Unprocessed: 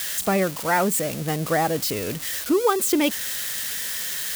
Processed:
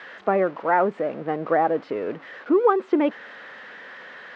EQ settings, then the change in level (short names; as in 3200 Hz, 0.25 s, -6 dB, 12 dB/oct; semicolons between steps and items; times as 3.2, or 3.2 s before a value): Butterworth band-pass 680 Hz, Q 0.53; air absorption 170 m; +3.0 dB